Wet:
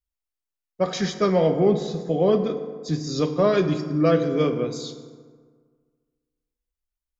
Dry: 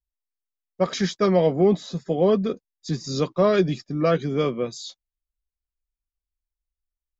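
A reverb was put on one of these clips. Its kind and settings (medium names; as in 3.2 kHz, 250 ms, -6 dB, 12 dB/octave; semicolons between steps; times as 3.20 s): FDN reverb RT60 1.7 s, low-frequency decay 1.05×, high-frequency decay 0.5×, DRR 6.5 dB; trim -1 dB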